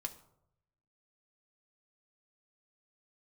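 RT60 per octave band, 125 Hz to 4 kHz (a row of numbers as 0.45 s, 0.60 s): 1.3 s, 0.80 s, 0.85 s, 0.75 s, 0.45 s, 0.40 s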